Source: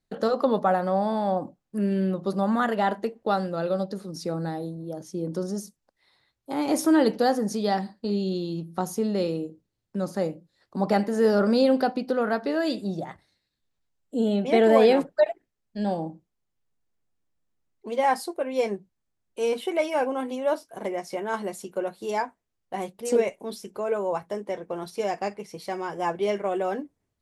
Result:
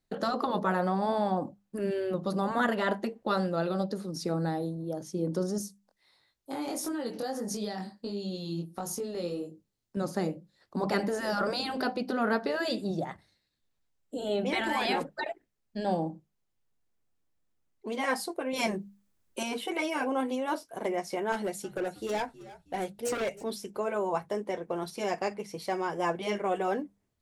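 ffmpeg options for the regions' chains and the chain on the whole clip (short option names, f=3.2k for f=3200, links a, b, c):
-filter_complex "[0:a]asettb=1/sr,asplit=3[a][b][c];[a]atrim=end=5.584[d];[b]atrim=start=5.58:end=9.97,asetpts=PTS-STARTPTS,afade=t=in:d=0.004:c=qsin,afade=t=out:st=4.386:d=0.004:c=qsin,bass=f=250:g=-1,treble=f=4k:g=5,acompressor=threshold=-26dB:ratio=12:attack=3.2:release=140:knee=1:detection=peak,flanger=delay=19.5:depth=3.6:speed=1.5[e];[c]atrim=start=9.966[f];[d][e]acrossfade=d=0.004:c1=hsin:c2=qsin[g];[g][f]acrossfade=d=0.004:c1=qsin:c2=hsin,asettb=1/sr,asplit=3[h][i][j];[h]atrim=end=18.534[k];[i]atrim=start=18.53:end=19.43,asetpts=PTS-STARTPTS,afade=t=in:d=0.004:c=qsin,afade=t=out:st=0.896:d=0.004:c=qsin,highshelf=f=9.4k:g=6.5,bandreject=f=740:w=10,acontrast=37[l];[j]atrim=start=19.426[m];[k][l]acrossfade=d=0.004:c1=hsin:c2=qsin[n];[n][m]acrossfade=d=0.004:c1=qsin:c2=hsin,asettb=1/sr,asplit=3[o][p][q];[o]atrim=end=21.324[r];[p]atrim=start=21.32:end=23.44,asetpts=PTS-STARTPTS,afade=t=in:d=0.004:c=qsin,afade=t=out:st=2.116:d=0.004:c=qsin,equalizer=f=1.1k:w=6.6:g=-13.5,asoftclip=type=hard:threshold=-26.5dB,asplit=4[s][t][u][v];[t]adelay=318,afreqshift=-73,volume=-18.5dB[w];[u]adelay=636,afreqshift=-146,volume=-26dB[x];[v]adelay=954,afreqshift=-219,volume=-33.6dB[y];[s][w][x][y]amix=inputs=4:normalize=0,atrim=end_sample=93492[z];[q]atrim=start=23.436[aa];[r][z]acrossfade=d=0.004:c1=hsin:c2=qsin[ab];[ab][aa]acrossfade=d=0.004:c1=qsin:c2=hsin,bandreject=f=50:t=h:w=6,bandreject=f=100:t=h:w=6,bandreject=f=150:t=h:w=6,bandreject=f=200:t=h:w=6,afftfilt=real='re*lt(hypot(re,im),0.447)':imag='im*lt(hypot(re,im),0.447)':win_size=1024:overlap=0.75"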